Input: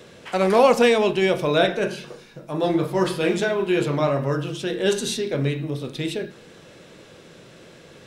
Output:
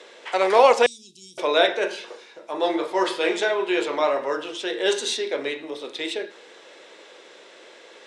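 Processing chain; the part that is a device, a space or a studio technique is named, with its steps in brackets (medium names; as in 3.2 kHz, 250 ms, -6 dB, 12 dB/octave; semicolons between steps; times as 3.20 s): phone speaker on a table (cabinet simulation 360–8900 Hz, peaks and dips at 910 Hz +5 dB, 2 kHz +5 dB, 3.5 kHz +4 dB); 0.86–1.38 s: inverse Chebyshev band-stop 560–1800 Hz, stop band 70 dB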